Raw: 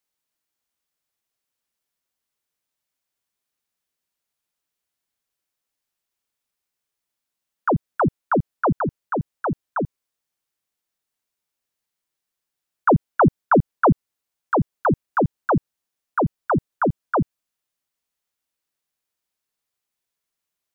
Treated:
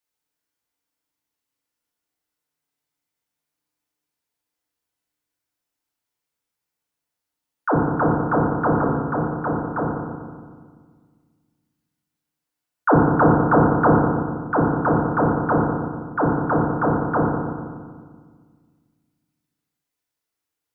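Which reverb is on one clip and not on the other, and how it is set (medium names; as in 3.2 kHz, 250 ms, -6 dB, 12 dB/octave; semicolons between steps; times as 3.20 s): FDN reverb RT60 1.7 s, low-frequency decay 1.3×, high-frequency decay 0.35×, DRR -3.5 dB; trim -4 dB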